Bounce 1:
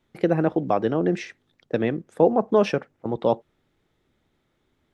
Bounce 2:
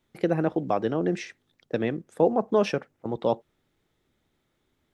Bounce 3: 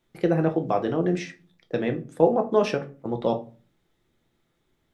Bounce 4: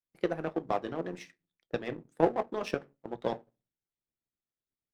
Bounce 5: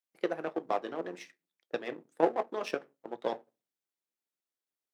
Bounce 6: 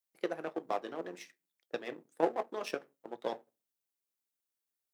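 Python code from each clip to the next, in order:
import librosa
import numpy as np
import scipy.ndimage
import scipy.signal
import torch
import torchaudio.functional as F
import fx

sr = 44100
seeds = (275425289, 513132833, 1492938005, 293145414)

y1 = fx.high_shelf(x, sr, hz=4900.0, db=6.5)
y1 = y1 * 10.0 ** (-3.5 / 20.0)
y2 = fx.room_shoebox(y1, sr, seeds[0], volume_m3=190.0, walls='furnished', distance_m=0.78)
y3 = fx.hpss(y2, sr, part='harmonic', gain_db=-12)
y3 = fx.power_curve(y3, sr, exponent=1.4)
y4 = scipy.signal.sosfilt(scipy.signal.butter(2, 310.0, 'highpass', fs=sr, output='sos'), y3)
y5 = fx.high_shelf(y4, sr, hz=6700.0, db=9.5)
y5 = y5 * 10.0 ** (-3.5 / 20.0)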